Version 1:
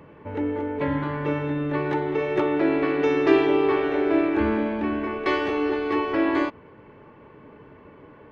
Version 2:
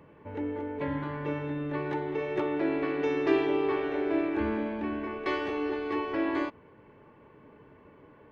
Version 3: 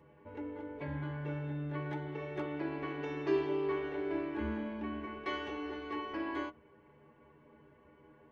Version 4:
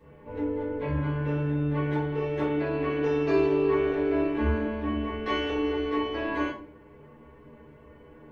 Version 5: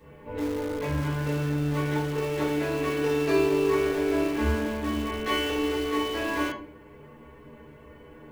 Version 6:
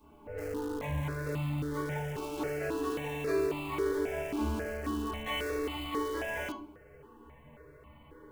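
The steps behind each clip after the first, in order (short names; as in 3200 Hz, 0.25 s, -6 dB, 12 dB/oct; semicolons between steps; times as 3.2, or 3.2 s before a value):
notch 1300 Hz, Q 25; gain -7 dB
metallic resonator 73 Hz, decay 0.21 s, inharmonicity 0.008
shoebox room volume 33 m³, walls mixed, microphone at 1.5 m
high shelf 2700 Hz +8.5 dB; in parallel at -11.5 dB: wrapped overs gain 27.5 dB
in parallel at -1 dB: limiter -19.5 dBFS, peak gain reduction 7.5 dB; on the sum: step phaser 3.7 Hz 500–1600 Hz; gain -8.5 dB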